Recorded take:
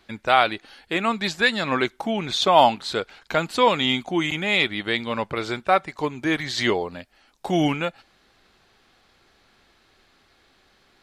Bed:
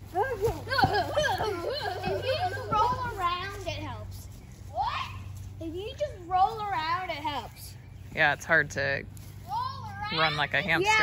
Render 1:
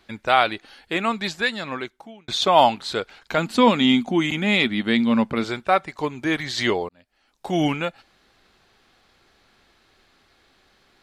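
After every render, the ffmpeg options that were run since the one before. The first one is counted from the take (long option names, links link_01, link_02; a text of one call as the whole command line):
ffmpeg -i in.wav -filter_complex "[0:a]asettb=1/sr,asplit=3[link_01][link_02][link_03];[link_01]atrim=end=3.384[link_04];[link_02]atrim=start=3.38:end=5.44,asetpts=PTS-STARTPTS,afade=type=in:duration=0.004:curve=qsin,afade=type=out:start_time=2.056:duration=0.004:curve=qsin,equalizer=frequency=230:width_type=o:width=0.47:gain=14.5[link_05];[link_03]atrim=start=5.436[link_06];[link_04][link_05]acrossfade=duration=0.004:curve1=hsin:curve2=qsin[link_07];[link_07][link_06]acrossfade=duration=0.004:curve1=qsin:curve2=hsin,asplit=3[link_08][link_09][link_10];[link_08]atrim=end=2.28,asetpts=PTS-STARTPTS,afade=type=out:start_time=1.07:duration=1.21[link_11];[link_09]atrim=start=2.28:end=6.89,asetpts=PTS-STARTPTS,afade=type=in:duration=0.004:curve=hsin,afade=type=out:start_time=4.606:duration=0.004:curve=hsin[link_12];[link_10]atrim=start=6.89,asetpts=PTS-STARTPTS,afade=type=in:duration=0.75[link_13];[link_11][link_12][link_13]concat=n=3:v=0:a=1" out.wav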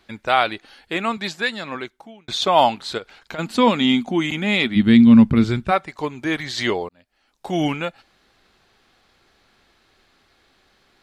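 ffmpeg -i in.wav -filter_complex "[0:a]asettb=1/sr,asplit=3[link_01][link_02][link_03];[link_01]atrim=end=1.174[link_04];[link_02]atrim=start=1.17:end=1.75,asetpts=PTS-STARTPTS,afade=type=in:duration=0.004:curve=qsin,afade=type=out:start_time=0.576:duration=0.004:curve=qsin,highpass=120[link_05];[link_03]atrim=start=1.746[link_06];[link_04][link_05]acrossfade=duration=0.004:curve1=hsin:curve2=qsin[link_07];[link_07][link_06]acrossfade=duration=0.004:curve1=qsin:curve2=hsin,asplit=3[link_08][link_09][link_10];[link_08]afade=type=out:start_time=2.97:duration=0.02[link_11];[link_09]acompressor=threshold=-28dB:ratio=10:attack=3.2:release=140:knee=1:detection=peak,afade=type=in:start_time=2.97:duration=0.02,afade=type=out:start_time=3.38:duration=0.02[link_12];[link_10]afade=type=in:start_time=3.38:duration=0.02[link_13];[link_11][link_12][link_13]amix=inputs=3:normalize=0,asplit=3[link_14][link_15][link_16];[link_14]afade=type=out:start_time=4.75:duration=0.02[link_17];[link_15]asubboost=boost=11.5:cutoff=210,afade=type=in:start_time=4.75:duration=0.02,afade=type=out:start_time=5.7:duration=0.02[link_18];[link_16]afade=type=in:start_time=5.7:duration=0.02[link_19];[link_17][link_18][link_19]amix=inputs=3:normalize=0" out.wav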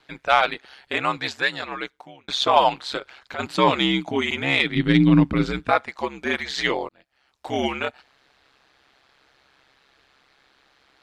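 ffmpeg -i in.wav -filter_complex "[0:a]aeval=exprs='val(0)*sin(2*PI*67*n/s)':channel_layout=same,asplit=2[link_01][link_02];[link_02]highpass=frequency=720:poles=1,volume=9dB,asoftclip=type=tanh:threshold=-2dB[link_03];[link_01][link_03]amix=inputs=2:normalize=0,lowpass=frequency=4000:poles=1,volume=-6dB" out.wav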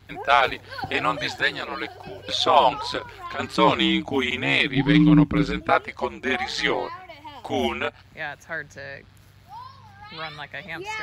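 ffmpeg -i in.wav -i bed.wav -filter_complex "[1:a]volume=-8.5dB[link_01];[0:a][link_01]amix=inputs=2:normalize=0" out.wav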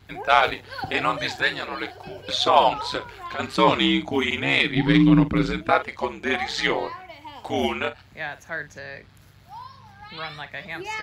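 ffmpeg -i in.wav -filter_complex "[0:a]asplit=2[link_01][link_02];[link_02]adelay=46,volume=-13dB[link_03];[link_01][link_03]amix=inputs=2:normalize=0" out.wav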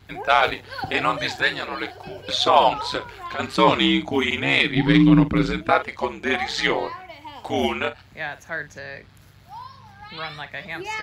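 ffmpeg -i in.wav -af "volume=1.5dB,alimiter=limit=-3dB:level=0:latency=1" out.wav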